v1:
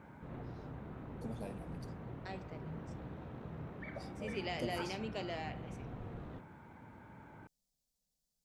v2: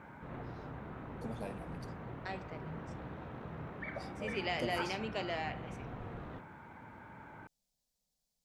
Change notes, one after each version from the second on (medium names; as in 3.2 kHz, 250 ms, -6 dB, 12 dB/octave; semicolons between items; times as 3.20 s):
master: add peaking EQ 1.5 kHz +6.5 dB 2.7 oct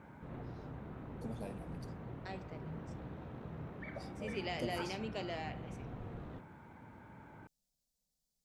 master: add peaking EQ 1.5 kHz -6.5 dB 2.7 oct